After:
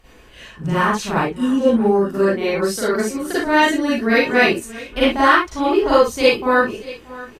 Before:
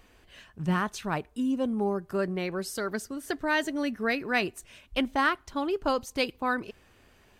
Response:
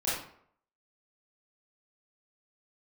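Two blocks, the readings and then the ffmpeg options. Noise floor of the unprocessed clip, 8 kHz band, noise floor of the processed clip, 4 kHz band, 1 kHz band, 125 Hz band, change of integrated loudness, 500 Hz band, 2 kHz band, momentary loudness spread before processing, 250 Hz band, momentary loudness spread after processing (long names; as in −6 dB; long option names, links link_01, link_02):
−61 dBFS, +11.0 dB, −45 dBFS, +11.5 dB, +12.5 dB, +8.5 dB, +12.5 dB, +14.5 dB, +12.0 dB, 7 LU, +11.5 dB, 9 LU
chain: -filter_complex "[0:a]aecho=1:1:630:0.126[link_01];[1:a]atrim=start_sample=2205,atrim=end_sample=3528,asetrate=29106,aresample=44100[link_02];[link_01][link_02]afir=irnorm=-1:irlink=0,volume=2dB"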